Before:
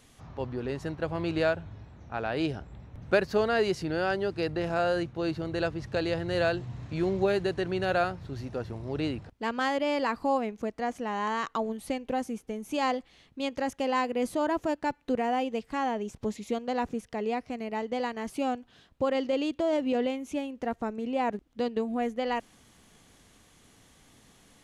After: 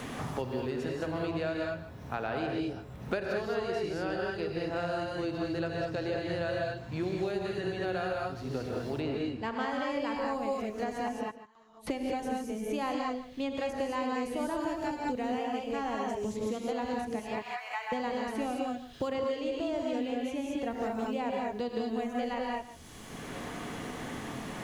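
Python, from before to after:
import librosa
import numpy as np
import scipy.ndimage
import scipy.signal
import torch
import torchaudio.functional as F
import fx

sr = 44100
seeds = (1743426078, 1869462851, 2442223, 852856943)

y = fx.highpass(x, sr, hz=1000.0, slope=24, at=(17.19, 17.92))
y = fx.quant_dither(y, sr, seeds[0], bits=12, dither='none')
y = fx.air_absorb(y, sr, metres=51.0, at=(9.02, 9.69))
y = fx.gate_flip(y, sr, shuts_db=-30.0, range_db=-42, at=(11.08, 11.87))
y = y + 10.0 ** (-18.5 / 20.0) * np.pad(y, (int(146 * sr / 1000.0), 0))[:len(y)]
y = fx.rev_gated(y, sr, seeds[1], gate_ms=240, shape='rising', drr_db=-2.0)
y = fx.band_squash(y, sr, depth_pct=100)
y = y * librosa.db_to_amplitude(-8.5)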